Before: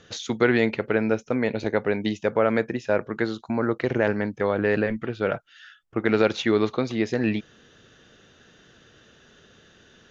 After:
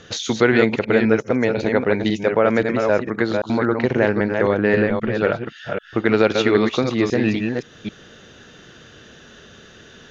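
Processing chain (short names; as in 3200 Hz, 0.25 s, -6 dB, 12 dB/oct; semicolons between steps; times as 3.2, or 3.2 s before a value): reverse delay 0.263 s, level -5 dB; in parallel at -1 dB: compressor, threshold -33 dBFS, peak gain reduction 17.5 dB; on the sum: gain +3 dB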